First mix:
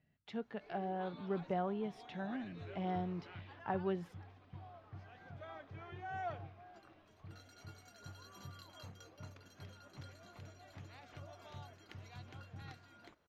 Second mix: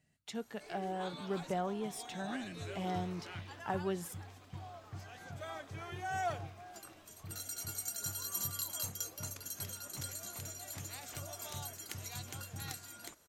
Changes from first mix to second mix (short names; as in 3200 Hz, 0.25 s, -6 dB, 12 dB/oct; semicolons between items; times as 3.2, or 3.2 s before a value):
background +4.5 dB; master: remove air absorption 290 m